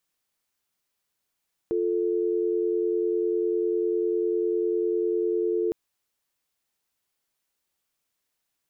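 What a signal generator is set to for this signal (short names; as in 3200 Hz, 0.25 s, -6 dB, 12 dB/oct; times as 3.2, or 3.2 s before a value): call progress tone dial tone, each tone -25 dBFS 4.01 s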